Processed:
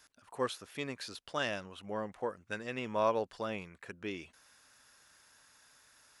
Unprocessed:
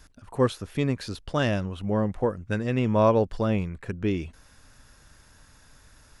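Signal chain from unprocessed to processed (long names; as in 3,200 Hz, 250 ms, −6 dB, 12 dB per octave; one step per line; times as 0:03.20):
high-pass filter 970 Hz 6 dB per octave
level −4 dB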